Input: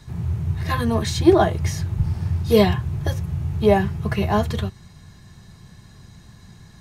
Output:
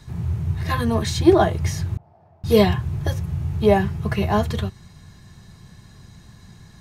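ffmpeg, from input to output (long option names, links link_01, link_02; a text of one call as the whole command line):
ffmpeg -i in.wav -filter_complex "[0:a]asettb=1/sr,asplit=3[link_01][link_02][link_03];[link_01]atrim=end=1.974[link_04];[link_02]atrim=start=1.97:end=2.44,asetpts=PTS-STARTPTS,afade=type=in:duration=0.004:curve=qsin,afade=type=out:start_time=0.466:duration=0.004:curve=qsin,bandpass=frequency=680:width_type=q:width=6.9:csg=0[link_05];[link_03]atrim=start=2.436[link_06];[link_04][link_05]acrossfade=duration=0.004:curve1=hsin:curve2=qsin[link_07];[link_07][link_06]acrossfade=duration=0.004:curve1=qsin:curve2=hsin" out.wav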